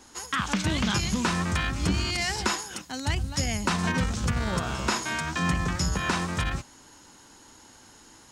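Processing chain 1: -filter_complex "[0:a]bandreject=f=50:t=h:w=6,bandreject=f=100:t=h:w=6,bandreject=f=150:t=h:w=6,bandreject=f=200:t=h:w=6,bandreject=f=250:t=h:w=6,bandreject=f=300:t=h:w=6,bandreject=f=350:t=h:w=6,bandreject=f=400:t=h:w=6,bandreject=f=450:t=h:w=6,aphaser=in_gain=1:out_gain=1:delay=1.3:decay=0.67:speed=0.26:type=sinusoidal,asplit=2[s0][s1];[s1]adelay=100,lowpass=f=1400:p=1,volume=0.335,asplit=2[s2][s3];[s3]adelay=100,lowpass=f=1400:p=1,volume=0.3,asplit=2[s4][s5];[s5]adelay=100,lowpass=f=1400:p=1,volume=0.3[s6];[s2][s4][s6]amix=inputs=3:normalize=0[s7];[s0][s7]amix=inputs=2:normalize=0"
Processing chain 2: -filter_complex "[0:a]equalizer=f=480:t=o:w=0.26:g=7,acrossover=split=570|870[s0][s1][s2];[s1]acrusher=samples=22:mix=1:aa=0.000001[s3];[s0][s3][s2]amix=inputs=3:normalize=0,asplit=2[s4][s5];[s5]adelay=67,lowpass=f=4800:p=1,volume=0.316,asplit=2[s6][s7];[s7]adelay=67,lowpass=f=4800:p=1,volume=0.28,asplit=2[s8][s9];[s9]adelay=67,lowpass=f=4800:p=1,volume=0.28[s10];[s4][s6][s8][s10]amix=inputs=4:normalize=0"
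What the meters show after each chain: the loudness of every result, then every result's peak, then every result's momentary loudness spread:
-23.0 LUFS, -27.5 LUFS; -5.0 dBFS, -10.5 dBFS; 9 LU, 5 LU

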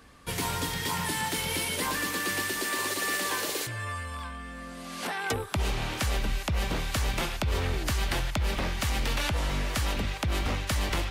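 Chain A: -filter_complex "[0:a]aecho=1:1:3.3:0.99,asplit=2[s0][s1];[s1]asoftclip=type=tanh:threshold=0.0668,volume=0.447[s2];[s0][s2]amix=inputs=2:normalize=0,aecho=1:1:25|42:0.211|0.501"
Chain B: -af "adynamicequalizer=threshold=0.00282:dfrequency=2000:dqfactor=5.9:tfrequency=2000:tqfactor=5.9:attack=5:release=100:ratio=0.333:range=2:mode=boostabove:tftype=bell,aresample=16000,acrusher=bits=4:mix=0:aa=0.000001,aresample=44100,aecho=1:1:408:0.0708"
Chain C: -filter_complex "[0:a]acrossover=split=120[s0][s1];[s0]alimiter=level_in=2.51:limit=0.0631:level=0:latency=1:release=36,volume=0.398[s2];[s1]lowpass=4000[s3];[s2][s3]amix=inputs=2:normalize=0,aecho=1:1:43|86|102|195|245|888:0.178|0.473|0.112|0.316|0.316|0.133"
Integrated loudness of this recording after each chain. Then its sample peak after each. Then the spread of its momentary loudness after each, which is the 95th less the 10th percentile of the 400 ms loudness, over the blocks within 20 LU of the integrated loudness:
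-23.0 LUFS, -28.0 LUFS, -30.5 LUFS; -10.5 dBFS, -16.0 dBFS, -15.0 dBFS; 6 LU, 4 LU, 5 LU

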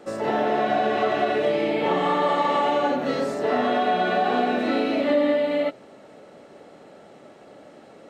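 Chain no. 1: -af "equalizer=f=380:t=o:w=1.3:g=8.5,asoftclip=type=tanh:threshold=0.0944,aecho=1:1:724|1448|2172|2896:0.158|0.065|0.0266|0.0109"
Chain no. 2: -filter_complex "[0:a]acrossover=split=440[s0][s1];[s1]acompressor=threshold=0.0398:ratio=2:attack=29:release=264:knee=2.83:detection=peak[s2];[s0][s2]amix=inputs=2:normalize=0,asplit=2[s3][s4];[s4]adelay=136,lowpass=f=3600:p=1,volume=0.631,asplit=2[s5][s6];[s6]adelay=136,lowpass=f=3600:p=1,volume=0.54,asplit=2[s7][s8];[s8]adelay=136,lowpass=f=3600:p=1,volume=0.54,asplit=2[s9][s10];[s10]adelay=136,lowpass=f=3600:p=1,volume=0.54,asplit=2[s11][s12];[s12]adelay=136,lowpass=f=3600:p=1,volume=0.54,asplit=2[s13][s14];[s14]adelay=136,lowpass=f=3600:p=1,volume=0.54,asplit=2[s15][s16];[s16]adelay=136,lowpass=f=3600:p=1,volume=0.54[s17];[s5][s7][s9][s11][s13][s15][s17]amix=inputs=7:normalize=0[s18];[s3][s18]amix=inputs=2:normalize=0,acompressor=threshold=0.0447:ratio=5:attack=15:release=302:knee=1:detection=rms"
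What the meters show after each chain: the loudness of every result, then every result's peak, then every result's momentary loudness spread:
-24.0 LUFS, -31.0 LUFS; -18.5 dBFS, -18.0 dBFS; 18 LU, 16 LU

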